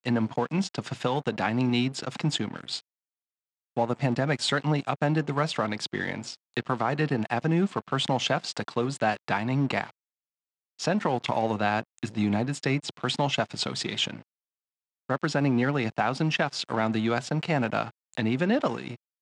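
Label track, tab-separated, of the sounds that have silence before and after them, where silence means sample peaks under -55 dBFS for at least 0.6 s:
3.760000	9.910000	sound
10.790000	14.220000	sound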